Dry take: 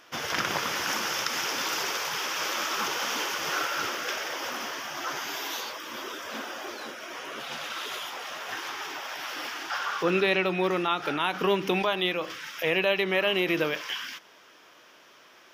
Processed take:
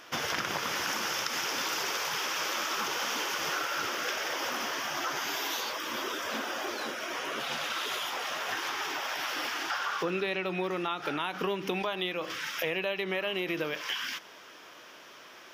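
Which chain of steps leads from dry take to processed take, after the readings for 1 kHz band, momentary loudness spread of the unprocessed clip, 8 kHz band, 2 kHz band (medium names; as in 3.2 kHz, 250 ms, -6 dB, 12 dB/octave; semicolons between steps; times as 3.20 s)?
-2.0 dB, 11 LU, -1.5 dB, -2.5 dB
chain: compression 4:1, threshold -34 dBFS, peak gain reduction 12.5 dB; trim +4 dB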